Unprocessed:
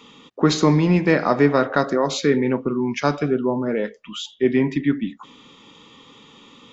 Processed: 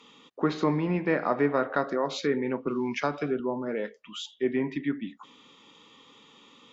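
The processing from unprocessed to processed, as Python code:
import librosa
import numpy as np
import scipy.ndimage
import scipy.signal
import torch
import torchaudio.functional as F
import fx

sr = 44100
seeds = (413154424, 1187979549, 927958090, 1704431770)

y = fx.env_lowpass_down(x, sr, base_hz=2300.0, full_db=-14.0)
y = fx.low_shelf(y, sr, hz=170.0, db=-10.5)
y = fx.band_squash(y, sr, depth_pct=70, at=(2.67, 3.4))
y = y * librosa.db_to_amplitude(-6.5)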